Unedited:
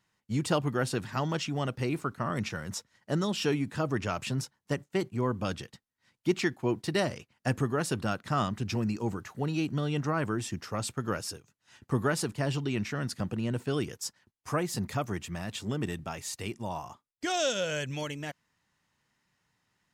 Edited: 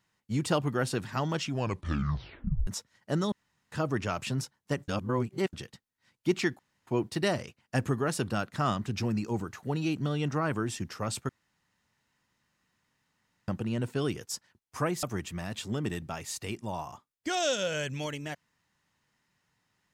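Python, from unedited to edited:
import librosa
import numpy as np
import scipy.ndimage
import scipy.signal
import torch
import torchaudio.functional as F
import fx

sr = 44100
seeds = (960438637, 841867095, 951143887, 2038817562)

y = fx.edit(x, sr, fx.tape_stop(start_s=1.46, length_s=1.21),
    fx.room_tone_fill(start_s=3.32, length_s=0.4),
    fx.reverse_span(start_s=4.88, length_s=0.65),
    fx.insert_room_tone(at_s=6.59, length_s=0.28),
    fx.room_tone_fill(start_s=11.01, length_s=2.19),
    fx.cut(start_s=14.75, length_s=0.25), tone=tone)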